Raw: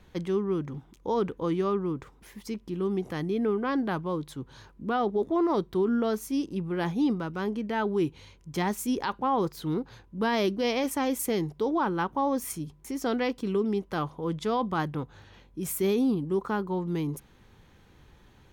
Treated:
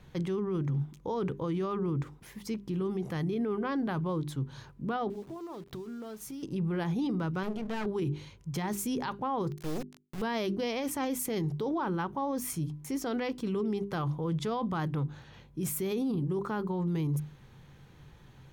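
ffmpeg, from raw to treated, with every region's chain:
-filter_complex "[0:a]asettb=1/sr,asplit=3[s0][s1][s2];[s0]atrim=end=5.104[s3];[s1]atrim=start=5.1:end=6.43,asetpts=PTS-STARTPTS,afade=t=in:d=0.004:c=qsin,afade=t=out:st=1.326:d=0.004:c=qsin,acompressor=threshold=0.0126:ratio=16:attack=3.2:release=140:knee=1:detection=peak,aeval=exprs='val(0)*gte(abs(val(0)),0.00237)':c=same[s4];[s2]atrim=start=6.426[s5];[s3][s4]acrossfade=d=0.004:c1=hsin:c2=qsin[s6];[s6][s5]acrossfade=d=0.004:c1=qsin:c2=hsin,asettb=1/sr,asplit=3[s7][s8][s9];[s7]atrim=end=7.434[s10];[s8]atrim=start=7.43:end=7.86,asetpts=PTS-STARTPTS,afade=t=in:d=0.004:c=qsin,afade=t=out:st=0.426:d=0.004:c=qsin,bandreject=f=60:t=h:w=6,bandreject=f=120:t=h:w=6,bandreject=f=180:t=h:w=6,bandreject=f=240:t=h:w=6,bandreject=f=300:t=h:w=6,bandreject=f=360:t=h:w=6,bandreject=f=420:t=h:w=6,aeval=exprs='clip(val(0),-1,0.0075)':c=same[s11];[s9]atrim=start=7.856[s12];[s10][s11]acrossfade=d=0.004:c1=hsin:c2=qsin[s13];[s13][s12]acrossfade=d=0.004:c1=qsin:c2=hsin,asettb=1/sr,asplit=3[s14][s15][s16];[s14]atrim=end=9.514[s17];[s15]atrim=start=9.51:end=10.22,asetpts=PTS-STARTPTS,afade=t=in:d=0.004:c=qsin,afade=t=out:st=0.706:d=0.004:c=qsin,lowpass=f=2100:p=1,acrusher=bits=4:dc=4:mix=0:aa=0.000001[s18];[s16]atrim=start=10.216[s19];[s17][s18]acrossfade=d=0.004:c1=hsin:c2=qsin[s20];[s20][s19]acrossfade=d=0.004:c1=qsin:c2=hsin,equalizer=f=140:w=4.1:g=14,bandreject=f=50:t=h:w=6,bandreject=f=100:t=h:w=6,bandreject=f=150:t=h:w=6,bandreject=f=200:t=h:w=6,bandreject=f=250:t=h:w=6,bandreject=f=300:t=h:w=6,bandreject=f=350:t=h:w=6,bandreject=f=400:t=h:w=6,alimiter=level_in=1.12:limit=0.0631:level=0:latency=1:release=16,volume=0.891"

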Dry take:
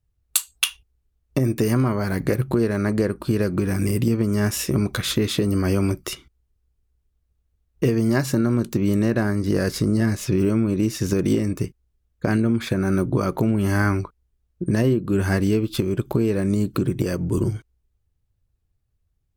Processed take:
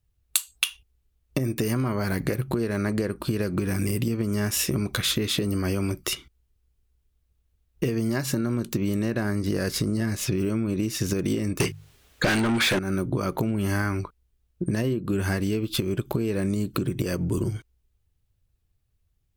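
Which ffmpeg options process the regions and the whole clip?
-filter_complex "[0:a]asettb=1/sr,asplit=3[s0][s1][s2];[s0]atrim=end=11.604[s3];[s1]atrim=start=11.6:end=12.79,asetpts=PTS-STARTPTS,afade=t=in:d=0.004:c=qsin,afade=t=out:st=1.186:d=0.004:c=qsin,acontrast=56,bandreject=f=50:t=h:w=6,bandreject=f=100:t=h:w=6,bandreject=f=150:t=h:w=6,asplit=2[s4][s5];[s5]highpass=f=720:p=1,volume=25.1,asoftclip=type=tanh:threshold=0.631[s6];[s4][s6]amix=inputs=2:normalize=0,lowpass=f=5700:p=1,volume=0.501[s7];[s2]atrim=start=12.786[s8];[s3][s7]acrossfade=d=0.004:c1=hsin:c2=qsin[s9];[s9][s8]acrossfade=d=0.004:c1=qsin:c2=hsin,equalizer=f=3000:w=1:g=4,acompressor=threshold=0.0794:ratio=6,highshelf=f=7900:g=5.5"

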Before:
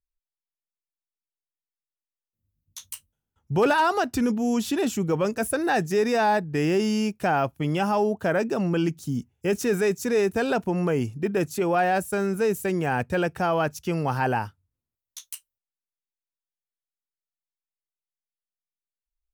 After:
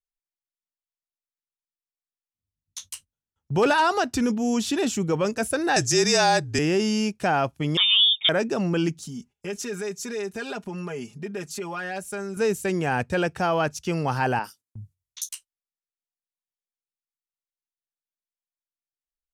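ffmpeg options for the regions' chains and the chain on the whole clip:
-filter_complex "[0:a]asettb=1/sr,asplit=3[s0][s1][s2];[s0]atrim=end=5.764[s3];[s1]atrim=start=5.76:end=6.59,asetpts=PTS-STARTPTS,afade=t=in:d=0.004:c=qsin,afade=t=out:st=0.826:d=0.004:c=qsin,equalizer=f=6700:w=0.7:g=14.5,afreqshift=-35[s4];[s2]atrim=start=6.586[s5];[s3][s4]acrossfade=d=0.004:c1=hsin:c2=qsin[s6];[s6][s5]acrossfade=d=0.004:c1=qsin:c2=hsin,asettb=1/sr,asplit=3[s7][s8][s9];[s7]atrim=end=7.774[s10];[s8]atrim=start=7.77:end=8.29,asetpts=PTS-STARTPTS,afade=t=in:d=0.004:c=qsin,afade=t=out:st=0.516:d=0.004:c=qsin,aemphasis=mode=reproduction:type=75fm,lowpass=f=3200:t=q:w=0.5098,lowpass=f=3200:t=q:w=0.6013,lowpass=f=3200:t=q:w=0.9,lowpass=f=3200:t=q:w=2.563,afreqshift=-3800[s11];[s9]atrim=start=8.286[s12];[s10][s11]acrossfade=d=0.004:c1=hsin:c2=qsin[s13];[s13][s12]acrossfade=d=0.004:c1=qsin:c2=hsin,asettb=1/sr,asplit=3[s14][s15][s16];[s14]atrim=end=9.024[s17];[s15]atrim=start=9.02:end=12.37,asetpts=PTS-STARTPTS,afade=t=in:d=0.004:c=qsin,afade=t=out:st=3.346:d=0.004:c=qsin,lowshelf=f=430:g=-5.5,aecho=1:1:4.9:0.82,atrim=end_sample=147735,acompressor=threshold=0.0158:ratio=2:attack=3.2:release=140:knee=1:detection=peak[s18];[s16]atrim=start=12.366[s19];[s17][s18]acrossfade=d=0.004:c1=hsin:c2=qsin[s20];[s20][s19]acrossfade=d=0.004:c1=qsin:c2=hsin,asettb=1/sr,asplit=3[s21][s22][s23];[s21]atrim=end=14.394[s24];[s22]atrim=start=14.39:end=15.29,asetpts=PTS-STARTPTS,afade=t=in:d=0.004:c=qsin,afade=t=out:st=0.896:d=0.004:c=qsin,aemphasis=mode=production:type=50fm,acrossover=split=190|4300[s25][s26][s27];[s27]adelay=50[s28];[s25]adelay=360[s29];[s29][s26][s28]amix=inputs=3:normalize=0,atrim=end_sample=39690[s30];[s23]atrim=start=15.286[s31];[s24][s30]acrossfade=d=0.004:c1=hsin:c2=qsin[s32];[s32][s31]acrossfade=d=0.004:c1=qsin:c2=hsin,lowpass=7600,agate=range=0.251:threshold=0.00316:ratio=16:detection=peak,highshelf=f=3600:g=8"

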